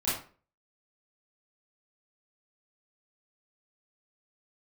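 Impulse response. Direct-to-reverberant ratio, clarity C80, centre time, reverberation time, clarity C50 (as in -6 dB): -12.0 dB, 8.5 dB, 48 ms, 0.40 s, 2.5 dB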